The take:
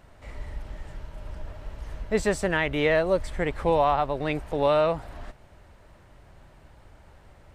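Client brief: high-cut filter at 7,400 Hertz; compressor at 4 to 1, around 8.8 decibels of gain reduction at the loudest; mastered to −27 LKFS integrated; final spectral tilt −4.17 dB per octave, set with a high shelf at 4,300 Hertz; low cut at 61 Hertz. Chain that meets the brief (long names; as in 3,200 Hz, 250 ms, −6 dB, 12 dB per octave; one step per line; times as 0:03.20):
high-pass filter 61 Hz
low-pass filter 7,400 Hz
high-shelf EQ 4,300 Hz +5.5 dB
downward compressor 4 to 1, threshold −28 dBFS
level +6.5 dB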